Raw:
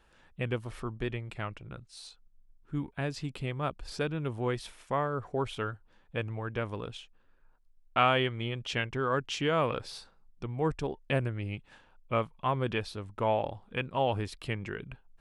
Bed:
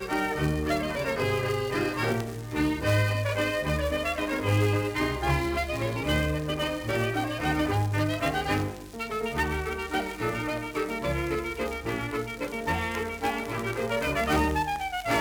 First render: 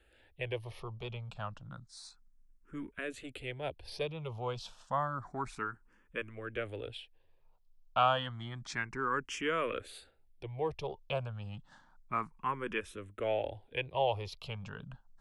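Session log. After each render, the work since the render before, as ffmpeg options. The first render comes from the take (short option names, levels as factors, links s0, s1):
-filter_complex "[0:a]acrossover=split=400|990[s0][s1][s2];[s0]asoftclip=type=tanh:threshold=0.0126[s3];[s3][s1][s2]amix=inputs=3:normalize=0,asplit=2[s4][s5];[s5]afreqshift=0.3[s6];[s4][s6]amix=inputs=2:normalize=1"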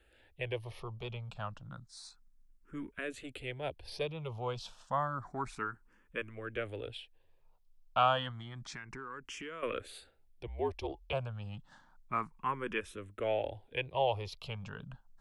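-filter_complex "[0:a]asettb=1/sr,asplit=3[s0][s1][s2];[s0]atrim=end=8.314[s3];[s1]atrim=start=8.31:end=9.63,asetpts=PTS-STARTPTS,afade=t=in:d=0.004:c=qsin,afade=t=out:st=1.316:d=0.004:c=qsin,acompressor=threshold=0.00891:ratio=6:attack=3.2:release=140:knee=1:detection=peak[s4];[s2]atrim=start=9.626[s5];[s3][s4]acrossfade=d=0.004:c1=hsin:c2=qsin[s6];[s6][s5]acrossfade=d=0.004:c1=qsin:c2=hsin,asettb=1/sr,asplit=3[s7][s8][s9];[s7]atrim=end=10.474[s10];[s8]atrim=start=10.47:end=11.13,asetpts=PTS-STARTPTS,afade=t=in:d=0.004:c=qsin,afade=t=out:st=0.656:d=0.004:c=qsin,afreqshift=-58[s11];[s9]atrim=start=11.126[s12];[s10][s11]acrossfade=d=0.004:c1=hsin:c2=qsin[s13];[s13][s12]acrossfade=d=0.004:c1=qsin:c2=hsin"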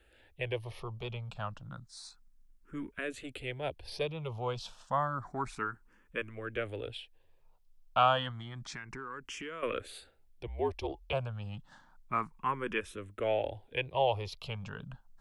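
-af "volume=1.26"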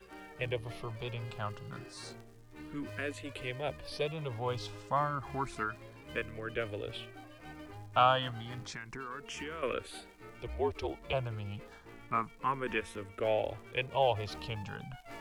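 -filter_complex "[1:a]volume=0.075[s0];[0:a][s0]amix=inputs=2:normalize=0"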